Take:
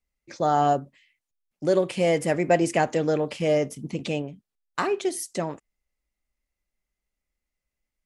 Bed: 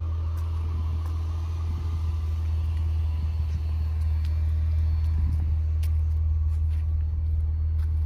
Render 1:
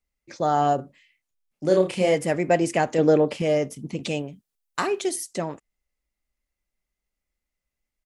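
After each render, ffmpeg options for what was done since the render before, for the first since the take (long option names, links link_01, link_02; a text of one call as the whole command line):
ffmpeg -i in.wav -filter_complex "[0:a]asplit=3[link_01][link_02][link_03];[link_01]afade=type=out:start_time=0.78:duration=0.02[link_04];[link_02]asplit=2[link_05][link_06];[link_06]adelay=32,volume=-4dB[link_07];[link_05][link_07]amix=inputs=2:normalize=0,afade=type=in:start_time=0.78:duration=0.02,afade=type=out:start_time=2.14:duration=0.02[link_08];[link_03]afade=type=in:start_time=2.14:duration=0.02[link_09];[link_04][link_08][link_09]amix=inputs=3:normalize=0,asettb=1/sr,asplit=3[link_10][link_11][link_12];[link_10]atrim=end=2.984[link_13];[link_11]atrim=start=2.98:end=3.42,asetpts=PTS-STARTPTS,afade=type=in:duration=0.004:curve=qsin,afade=type=out:start_time=0.436:duration=0.004:curve=qsin,equalizer=frequency=370:width_type=o:width=2.7:gain=7[link_14];[link_12]atrim=start=3.416[link_15];[link_13][link_14]acrossfade=duration=0.004:curve1=hsin:curve2=qsin[link_16];[link_16][link_15]acrossfade=duration=0.004:curve1=qsin:curve2=hsin,asettb=1/sr,asplit=3[link_17][link_18][link_19];[link_17]atrim=end=4.034[link_20];[link_18]atrim=start=4.03:end=5.16,asetpts=PTS-STARTPTS,afade=type=in:duration=0.004:curve=qsin,afade=type=out:start_time=1.126:duration=0.004:curve=qsin,highshelf=frequency=5100:gain=9[link_21];[link_19]atrim=start=5.156[link_22];[link_20][link_21]acrossfade=duration=0.004:curve1=hsin:curve2=qsin[link_23];[link_23][link_22]acrossfade=duration=0.004:curve1=qsin:curve2=hsin" out.wav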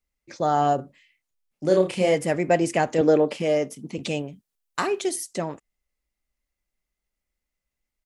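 ffmpeg -i in.wav -filter_complex "[0:a]asettb=1/sr,asplit=3[link_01][link_02][link_03];[link_01]atrim=end=3.014[link_04];[link_02]atrim=start=3.01:end=3.98,asetpts=PTS-STARTPTS,afade=type=in:duration=0.004:curve=qsin,afade=type=out:start_time=0.966:duration=0.004:curve=qsin,highpass=180[link_05];[link_03]atrim=start=3.976[link_06];[link_04][link_05]acrossfade=duration=0.004:curve1=hsin:curve2=qsin[link_07];[link_07][link_06]acrossfade=duration=0.004:curve1=qsin:curve2=hsin" out.wav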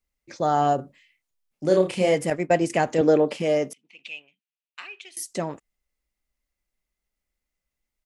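ffmpeg -i in.wav -filter_complex "[0:a]asettb=1/sr,asplit=3[link_01][link_02][link_03];[link_01]atrim=end=2.304[link_04];[link_02]atrim=start=2.3:end=2.7,asetpts=PTS-STARTPTS,afade=type=in:duration=0.004:curve=qsin,afade=type=out:start_time=0.396:duration=0.004:curve=qsin,agate=range=-33dB:threshold=-22dB:ratio=3:release=100:detection=peak[link_05];[link_03]atrim=start=2.696[link_06];[link_04][link_05]acrossfade=duration=0.004:curve1=hsin:curve2=qsin[link_07];[link_07][link_06]acrossfade=duration=0.004:curve1=qsin:curve2=hsin,asettb=1/sr,asplit=3[link_08][link_09][link_10];[link_08]atrim=end=3.734[link_11];[link_09]atrim=start=3.73:end=5.17,asetpts=PTS-STARTPTS,afade=type=in:duration=0.004:curve=qsin,afade=type=out:start_time=1.436:duration=0.004:curve=qsin,bandpass=frequency=2600:width_type=q:width=4.4[link_12];[link_10]atrim=start=5.166[link_13];[link_11][link_12]acrossfade=duration=0.004:curve1=hsin:curve2=qsin[link_14];[link_14][link_13]acrossfade=duration=0.004:curve1=qsin:curve2=hsin" out.wav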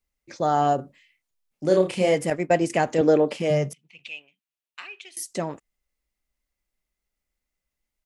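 ffmpeg -i in.wav -filter_complex "[0:a]asettb=1/sr,asplit=3[link_01][link_02][link_03];[link_01]atrim=end=3.504[link_04];[link_02]atrim=start=3.5:end=4.09,asetpts=PTS-STARTPTS,afade=type=in:duration=0.004:curve=qsin,afade=type=out:start_time=0.586:duration=0.004:curve=qsin,lowshelf=frequency=200:width_type=q:width=3:gain=7.5[link_05];[link_03]atrim=start=4.086[link_06];[link_04][link_05]acrossfade=duration=0.004:curve1=hsin:curve2=qsin[link_07];[link_07][link_06]acrossfade=duration=0.004:curve1=qsin:curve2=hsin" out.wav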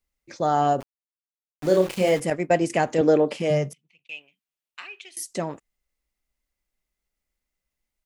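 ffmpeg -i in.wav -filter_complex "[0:a]asettb=1/sr,asplit=3[link_01][link_02][link_03];[link_01]atrim=end=0.804[link_04];[link_02]atrim=start=0.8:end=2.2,asetpts=PTS-STARTPTS,afade=type=in:duration=0.004:curve=qsin,afade=type=out:start_time=1.396:duration=0.004:curve=qsin,aeval=exprs='val(0)*gte(abs(val(0)),0.0237)':channel_layout=same[link_05];[link_03]atrim=start=2.196[link_06];[link_04][link_05]acrossfade=duration=0.004:curve1=hsin:curve2=qsin[link_07];[link_07][link_06]acrossfade=duration=0.004:curve1=qsin:curve2=hsin,asplit=2[link_08][link_09];[link_08]atrim=end=4.09,asetpts=PTS-STARTPTS,afade=type=out:start_time=3.57:duration=0.52[link_10];[link_09]atrim=start=4.09,asetpts=PTS-STARTPTS,afade=type=in:duration=0.004:curve=hsin[link_11];[link_10][link_11]concat=n=2:v=0:a=1" out.wav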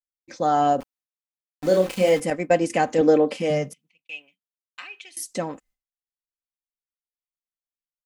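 ffmpeg -i in.wav -af "agate=range=-33dB:threshold=-53dB:ratio=3:detection=peak,aecho=1:1:3.9:0.46" out.wav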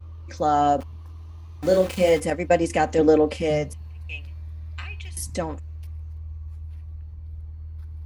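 ffmpeg -i in.wav -i bed.wav -filter_complex "[1:a]volume=-11.5dB[link_01];[0:a][link_01]amix=inputs=2:normalize=0" out.wav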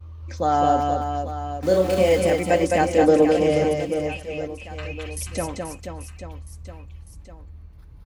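ffmpeg -i in.wav -af "aecho=1:1:210|483|837.9|1299|1899:0.631|0.398|0.251|0.158|0.1" out.wav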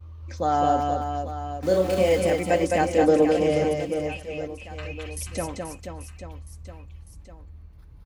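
ffmpeg -i in.wav -af "volume=-2.5dB" out.wav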